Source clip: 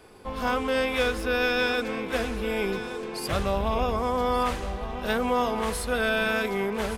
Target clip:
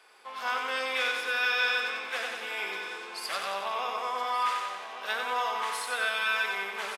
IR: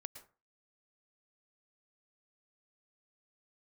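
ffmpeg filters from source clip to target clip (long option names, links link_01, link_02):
-af "highpass=1100,highshelf=frequency=9200:gain=-10.5,aecho=1:1:92|184|276|368|460|552|644|736:0.596|0.351|0.207|0.122|0.0722|0.0426|0.0251|0.0148"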